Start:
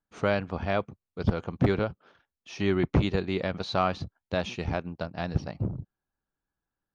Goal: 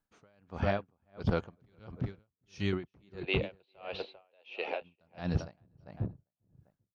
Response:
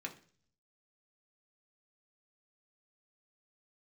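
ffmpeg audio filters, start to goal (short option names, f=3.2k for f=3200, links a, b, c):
-filter_complex "[0:a]asettb=1/sr,asplit=3[a][b][c];[a]atrim=end=1.574[d];[b]atrim=start=1.57:end=2.73,asetpts=PTS-STARTPTS,afade=t=in:d=0.004:c=qsin,afade=t=out:st=1.156:d=0.004:c=qsin,equalizer=f=640:w=0.32:g=-13[e];[c]atrim=start=2.726[f];[d][e]acrossfade=d=0.004:c1=hsin:c2=qsin[g];[g][f]acrossfade=d=0.004:c1=qsin:c2=hsin,alimiter=limit=-19dB:level=0:latency=1:release=32,asettb=1/sr,asplit=3[h][i][j];[h]atrim=end=3.234[k];[i]atrim=start=3.23:end=4.82,asetpts=PTS-STARTPTS,afade=t=in:d=0.004:c=qsin,afade=t=out:st=1.586:d=0.004:c=qsin,highpass=f=420:w=0.5412,highpass=f=420:w=1.3066,equalizer=f=500:t=q:w=4:g=6,equalizer=f=1.2k:t=q:w=4:g=-7,equalizer=f=1.7k:t=q:w=4:g=-4,equalizer=f=2.7k:t=q:w=4:g=10,lowpass=f=3.9k:w=0.5412,lowpass=f=3.9k:w=1.3066[l];[j]atrim=start=4.816[m];[k][l]acrossfade=d=0.004:c1=hsin:c2=qsin[n];[n][m]acrossfade=d=0.004:c1=qsin:c2=hsin,asplit=2[o][p];[p]adelay=397,lowpass=f=2.2k:p=1,volume=-6dB,asplit=2[q][r];[r]adelay=397,lowpass=f=2.2k:p=1,volume=0.2,asplit=2[s][t];[t]adelay=397,lowpass=f=2.2k:p=1,volume=0.2[u];[o][q][s][u]amix=inputs=4:normalize=0,aeval=exprs='val(0)*pow(10,-39*(0.5-0.5*cos(2*PI*1.5*n/s))/20)':c=same,volume=2.5dB"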